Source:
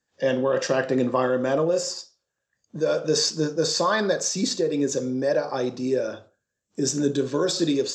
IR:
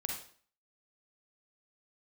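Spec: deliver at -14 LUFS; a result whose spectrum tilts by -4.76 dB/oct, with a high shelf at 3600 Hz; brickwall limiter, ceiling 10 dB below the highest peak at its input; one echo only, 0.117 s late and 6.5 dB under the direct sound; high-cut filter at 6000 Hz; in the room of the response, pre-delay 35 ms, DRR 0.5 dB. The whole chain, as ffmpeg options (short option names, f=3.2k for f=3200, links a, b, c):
-filter_complex "[0:a]lowpass=6k,highshelf=f=3.6k:g=-6.5,alimiter=limit=-20dB:level=0:latency=1,aecho=1:1:117:0.473,asplit=2[a][b];[1:a]atrim=start_sample=2205,adelay=35[c];[b][c]afir=irnorm=-1:irlink=0,volume=-2dB[d];[a][d]amix=inputs=2:normalize=0,volume=11dB"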